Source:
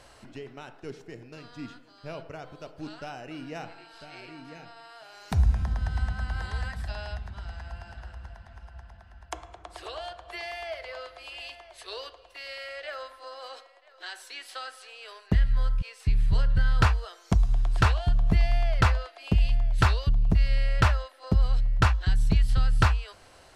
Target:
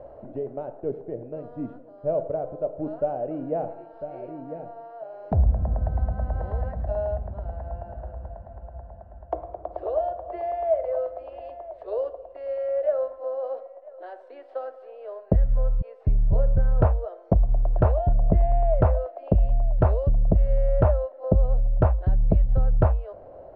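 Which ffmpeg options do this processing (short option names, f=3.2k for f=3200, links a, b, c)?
-filter_complex "[0:a]asplit=2[a][b];[b]acompressor=threshold=-29dB:ratio=6,volume=-2dB[c];[a][c]amix=inputs=2:normalize=0,lowpass=f=590:t=q:w=4.8"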